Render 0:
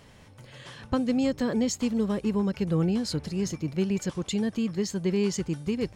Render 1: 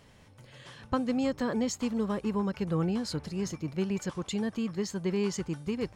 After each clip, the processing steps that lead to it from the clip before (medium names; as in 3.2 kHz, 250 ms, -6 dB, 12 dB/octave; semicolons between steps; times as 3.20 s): dynamic bell 1.1 kHz, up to +7 dB, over -46 dBFS, Q 1; trim -4.5 dB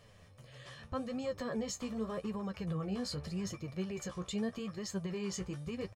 comb 1.7 ms, depth 45%; peak limiter -26.5 dBFS, peak gain reduction 10 dB; flange 0.83 Hz, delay 8.1 ms, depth 8.5 ms, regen +28%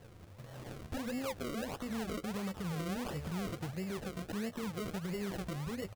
compression 2.5:1, threshold -39 dBFS, peak gain reduction 5.5 dB; peak limiter -36.5 dBFS, peak gain reduction 5 dB; decimation with a swept rate 35×, swing 100% 1.5 Hz; trim +5.5 dB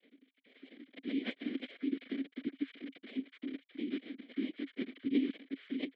formants replaced by sine waves; noise-vocoded speech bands 6; vowel filter i; trim +10 dB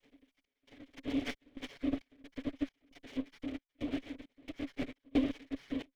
comb filter that takes the minimum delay 7.1 ms; trance gate "xx.xxx.xx." 67 bpm -24 dB; in parallel at -11 dB: crossover distortion -51.5 dBFS